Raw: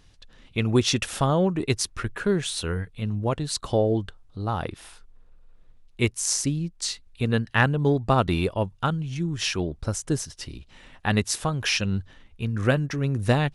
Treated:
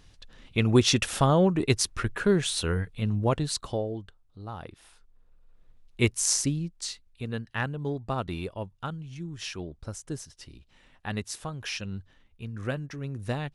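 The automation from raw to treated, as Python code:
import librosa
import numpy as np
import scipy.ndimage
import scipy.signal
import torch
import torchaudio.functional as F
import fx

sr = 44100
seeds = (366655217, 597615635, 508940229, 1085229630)

y = fx.gain(x, sr, db=fx.line((3.43, 0.5), (3.93, -11.5), (4.71, -11.5), (6.22, 1.0), (7.24, -10.0)))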